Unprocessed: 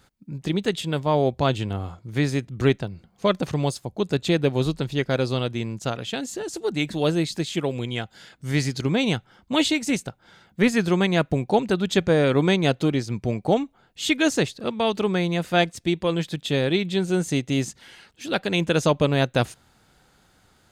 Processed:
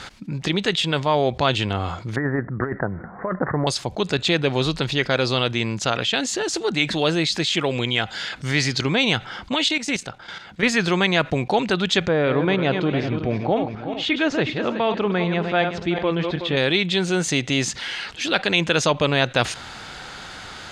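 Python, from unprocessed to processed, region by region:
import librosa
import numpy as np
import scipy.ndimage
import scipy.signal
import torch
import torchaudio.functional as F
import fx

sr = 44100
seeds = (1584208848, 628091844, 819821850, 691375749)

y = fx.chain(x, sr, fx.steep_lowpass(hz=1900.0, slope=96),
    fx.low_shelf(hz=85.0, db=-10.0),
    fx.over_compress(threshold_db=-24.0, ratio=-0.5), at=(2.16, 3.67))
y = fx.chain(y, sr, fx.level_steps(step_db=13),
    fx.upward_expand(threshold_db=-36.0, expansion=1.5), at=(9.54, 10.63))
y = fx.chain(y, sr, fx.reverse_delay_fb(ms=186, feedback_pct=41, wet_db=-9.5),
    fx.spacing_loss(db_at_10k=32), at=(12.08, 16.57))
y = scipy.signal.sosfilt(scipy.signal.butter(2, 4900.0, 'lowpass', fs=sr, output='sos'), y)
y = fx.tilt_shelf(y, sr, db=-6.0, hz=680.0)
y = fx.env_flatten(y, sr, amount_pct=50)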